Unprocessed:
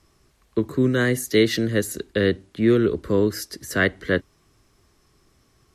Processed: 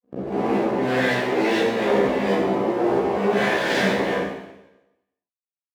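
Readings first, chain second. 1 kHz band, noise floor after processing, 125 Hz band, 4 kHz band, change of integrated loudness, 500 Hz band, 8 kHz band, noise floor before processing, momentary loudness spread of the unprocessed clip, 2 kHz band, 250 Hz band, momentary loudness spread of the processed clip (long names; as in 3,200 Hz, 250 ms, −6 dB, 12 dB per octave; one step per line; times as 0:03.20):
+13.0 dB, below −85 dBFS, −5.5 dB, 0.0 dB, +0.5 dB, +2.0 dB, −7.5 dB, −62 dBFS, 8 LU, +1.5 dB, −1.0 dB, 5 LU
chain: peak hold with a rise ahead of every peak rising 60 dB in 2.18 s
comparator with hysteresis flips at −22 dBFS
low-pass filter 3,900 Hz 6 dB per octave
parametric band 1,200 Hz −13 dB 0.52 octaves
gate on every frequency bin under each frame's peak −20 dB strong
amplitude tremolo 2.1 Hz, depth 41%
low-shelf EQ 320 Hz −8.5 dB
half-wave rectification
high-pass filter 180 Hz 12 dB per octave
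double-tracking delay 15 ms −2 dB
four-comb reverb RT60 0.94 s, combs from 31 ms, DRR −10 dB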